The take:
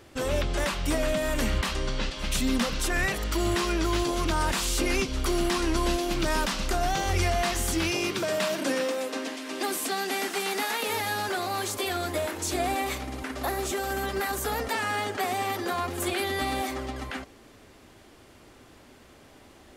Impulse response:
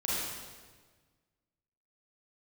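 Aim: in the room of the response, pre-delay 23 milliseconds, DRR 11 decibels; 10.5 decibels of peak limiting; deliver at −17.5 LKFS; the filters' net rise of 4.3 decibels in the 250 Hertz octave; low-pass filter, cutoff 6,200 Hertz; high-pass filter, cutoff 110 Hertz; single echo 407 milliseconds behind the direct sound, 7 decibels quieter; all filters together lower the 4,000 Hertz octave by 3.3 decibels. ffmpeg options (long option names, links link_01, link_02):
-filter_complex "[0:a]highpass=110,lowpass=6200,equalizer=frequency=250:width_type=o:gain=6,equalizer=frequency=4000:width_type=o:gain=-3.5,alimiter=limit=-22.5dB:level=0:latency=1,aecho=1:1:407:0.447,asplit=2[link_01][link_02];[1:a]atrim=start_sample=2205,adelay=23[link_03];[link_02][link_03]afir=irnorm=-1:irlink=0,volume=-18dB[link_04];[link_01][link_04]amix=inputs=2:normalize=0,volume=12dB"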